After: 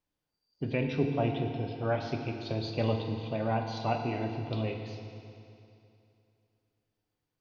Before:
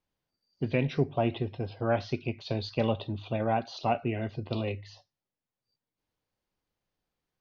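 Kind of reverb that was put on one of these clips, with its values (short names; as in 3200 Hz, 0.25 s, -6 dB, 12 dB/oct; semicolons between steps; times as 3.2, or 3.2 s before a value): FDN reverb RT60 2.7 s, high-frequency decay 0.95×, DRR 3.5 dB; gain -3 dB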